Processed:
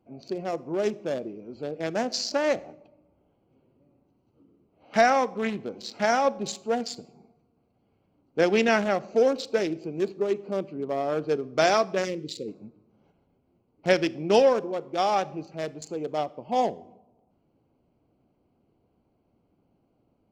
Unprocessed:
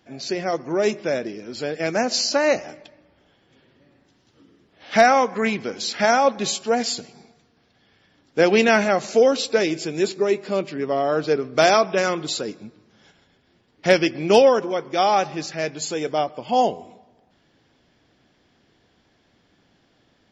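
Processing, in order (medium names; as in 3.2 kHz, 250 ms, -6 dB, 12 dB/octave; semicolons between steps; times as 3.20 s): local Wiener filter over 25 samples; time-frequency box 12.05–12.48 s, 540–1800 Hz -23 dB; on a send: reverberation RT60 0.50 s, pre-delay 27 ms, DRR 20 dB; on the sum: trim -5 dB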